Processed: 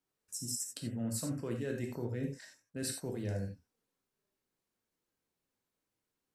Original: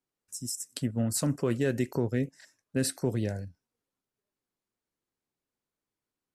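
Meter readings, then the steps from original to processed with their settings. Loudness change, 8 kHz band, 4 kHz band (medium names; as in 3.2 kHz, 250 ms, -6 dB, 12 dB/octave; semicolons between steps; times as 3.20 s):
-7.5 dB, -4.5 dB, -5.5 dB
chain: reverse; compression 6:1, threshold -36 dBFS, peak gain reduction 13 dB; reverse; gated-style reverb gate 110 ms flat, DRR 2 dB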